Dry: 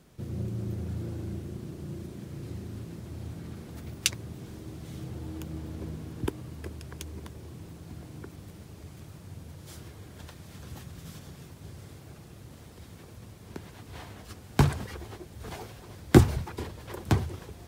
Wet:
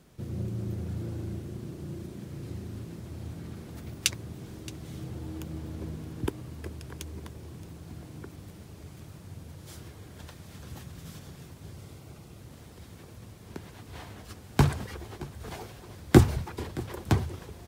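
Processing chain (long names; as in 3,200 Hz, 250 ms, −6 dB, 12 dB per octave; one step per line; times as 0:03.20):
0:11.75–0:12.39: notch filter 1,700 Hz, Q 7.4
on a send: single-tap delay 622 ms −19.5 dB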